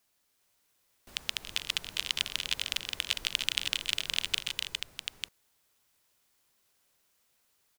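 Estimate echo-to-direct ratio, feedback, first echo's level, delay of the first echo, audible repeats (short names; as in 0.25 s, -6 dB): -1.0 dB, no steady repeat, -13.5 dB, 0.281 s, 4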